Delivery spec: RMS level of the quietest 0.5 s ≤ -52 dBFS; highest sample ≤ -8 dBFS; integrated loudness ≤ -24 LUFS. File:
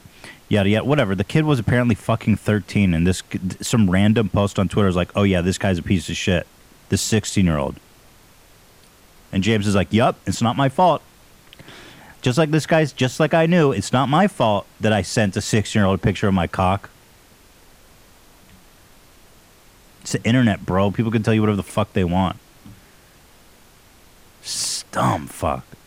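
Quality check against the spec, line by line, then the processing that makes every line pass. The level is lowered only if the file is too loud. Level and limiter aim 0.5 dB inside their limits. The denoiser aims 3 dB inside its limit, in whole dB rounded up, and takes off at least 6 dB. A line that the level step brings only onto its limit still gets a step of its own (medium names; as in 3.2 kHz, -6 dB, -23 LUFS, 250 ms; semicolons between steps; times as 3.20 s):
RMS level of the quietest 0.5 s -50 dBFS: fail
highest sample -5.5 dBFS: fail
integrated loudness -19.5 LUFS: fail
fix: trim -5 dB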